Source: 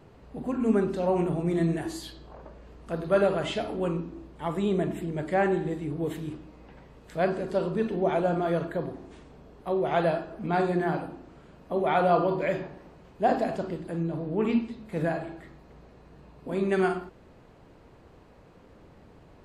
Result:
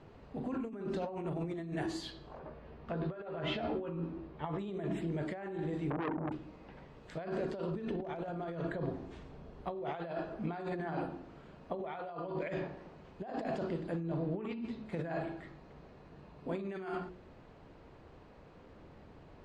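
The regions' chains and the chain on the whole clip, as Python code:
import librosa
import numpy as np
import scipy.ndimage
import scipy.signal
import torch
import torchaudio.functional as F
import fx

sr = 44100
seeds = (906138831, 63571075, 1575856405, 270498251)

y = fx.chain(x, sr, fx.gaussian_blur(sigma=1.9),
    fx.doubler(ms=13.0, db=-3.5), at=(2.39, 4.59))
y = fx.chain(y, sr, fx.envelope_sharpen(power=3.0),
    fx.peak_eq(hz=250.0, db=10.0, octaves=0.64),
    fx.transformer_sat(knee_hz=1200.0), at=(5.9, 6.32))
y = fx.chain(y, sr, fx.low_shelf(hz=120.0, db=7.5),
    fx.clip_hard(threshold_db=-17.0), at=(7.71, 9.75))
y = scipy.signal.sosfilt(scipy.signal.butter(2, 5500.0, 'lowpass', fs=sr, output='sos'), y)
y = fx.hum_notches(y, sr, base_hz=60, count=9)
y = fx.over_compress(y, sr, threshold_db=-32.0, ratio=-1.0)
y = F.gain(torch.from_numpy(y), -6.0).numpy()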